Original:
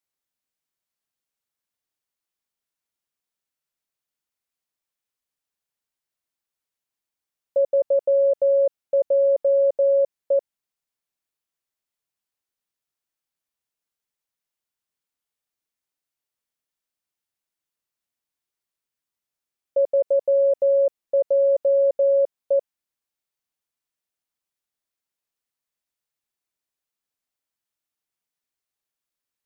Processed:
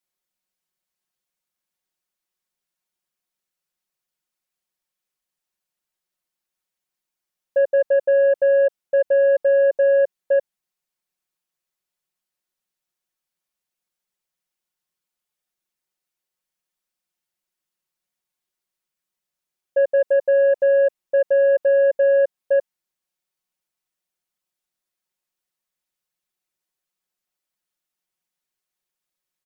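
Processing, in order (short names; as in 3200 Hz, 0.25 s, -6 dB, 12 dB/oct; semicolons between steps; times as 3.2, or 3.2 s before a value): comb 5.5 ms, depth 77%; in parallel at -7.5 dB: sine folder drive 4 dB, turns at -9 dBFS; on the sum: gain -6 dB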